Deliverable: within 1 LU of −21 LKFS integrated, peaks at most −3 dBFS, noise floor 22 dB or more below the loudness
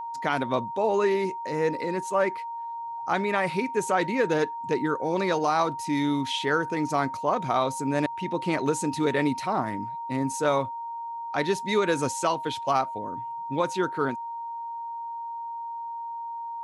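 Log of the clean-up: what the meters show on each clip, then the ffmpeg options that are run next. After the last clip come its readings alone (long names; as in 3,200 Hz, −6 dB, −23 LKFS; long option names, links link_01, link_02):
interfering tone 930 Hz; level of the tone −32 dBFS; integrated loudness −27.5 LKFS; sample peak −11.5 dBFS; target loudness −21.0 LKFS
→ -af "bandreject=frequency=930:width=30"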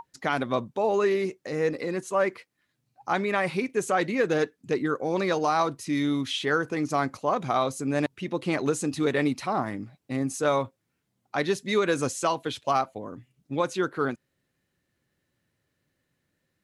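interfering tone none found; integrated loudness −27.0 LKFS; sample peak −12.0 dBFS; target loudness −21.0 LKFS
→ -af "volume=6dB"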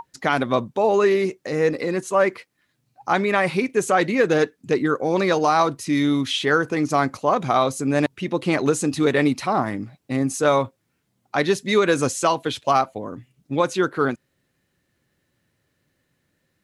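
integrated loudness −21.0 LKFS; sample peak −6.0 dBFS; background noise floor −72 dBFS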